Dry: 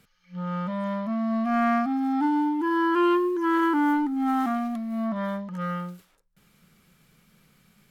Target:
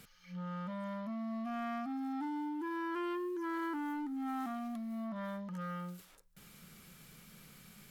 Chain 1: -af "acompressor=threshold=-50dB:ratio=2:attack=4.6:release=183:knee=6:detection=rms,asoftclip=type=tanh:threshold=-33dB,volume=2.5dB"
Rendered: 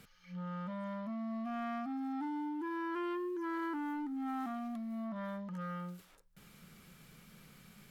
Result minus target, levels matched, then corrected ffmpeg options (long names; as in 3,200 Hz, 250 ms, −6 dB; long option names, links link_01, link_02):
8,000 Hz band −4.5 dB
-af "acompressor=threshold=-50dB:ratio=2:attack=4.6:release=183:knee=6:detection=rms,highshelf=frequency=4300:gain=6,asoftclip=type=tanh:threshold=-33dB,volume=2.5dB"